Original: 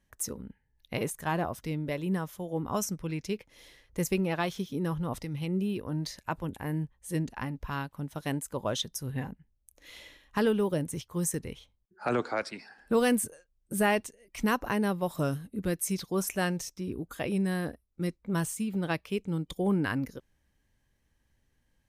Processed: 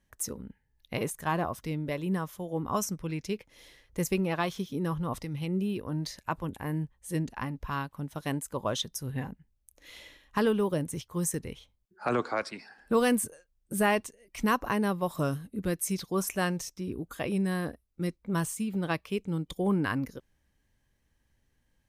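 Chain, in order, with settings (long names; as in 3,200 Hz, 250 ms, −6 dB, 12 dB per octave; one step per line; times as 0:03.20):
dynamic equaliser 1,100 Hz, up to +6 dB, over −53 dBFS, Q 6.3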